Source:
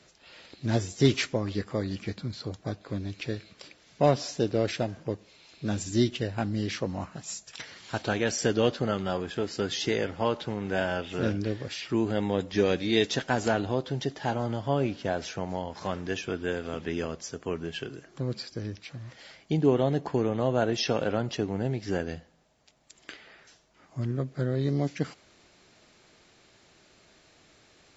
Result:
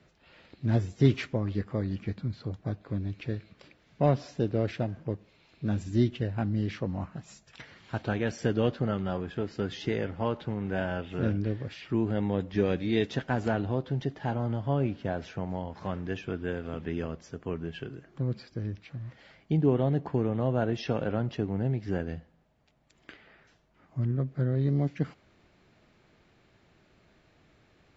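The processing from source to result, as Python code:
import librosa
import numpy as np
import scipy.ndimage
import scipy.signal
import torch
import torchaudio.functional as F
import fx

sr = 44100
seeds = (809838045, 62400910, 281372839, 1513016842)

y = fx.bass_treble(x, sr, bass_db=7, treble_db=-14)
y = y * librosa.db_to_amplitude(-4.0)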